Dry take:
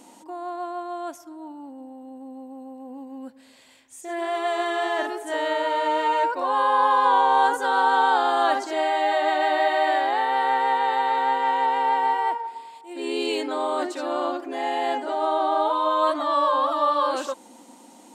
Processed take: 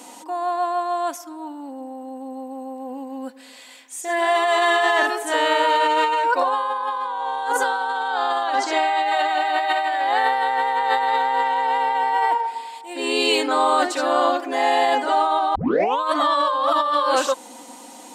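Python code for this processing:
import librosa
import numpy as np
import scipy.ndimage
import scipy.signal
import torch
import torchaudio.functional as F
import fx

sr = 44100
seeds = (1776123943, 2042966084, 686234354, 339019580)

y = fx.lowpass(x, sr, hz=7100.0, slope=12, at=(8.08, 9.08))
y = fx.edit(y, sr, fx.tape_start(start_s=15.55, length_s=0.45), tone=tone)
y = fx.highpass(y, sr, hz=630.0, slope=6)
y = y + 0.41 * np.pad(y, (int(4.0 * sr / 1000.0), 0))[:len(y)]
y = fx.over_compress(y, sr, threshold_db=-27.0, ratio=-1.0)
y = F.gain(torch.from_numpy(y), 7.0).numpy()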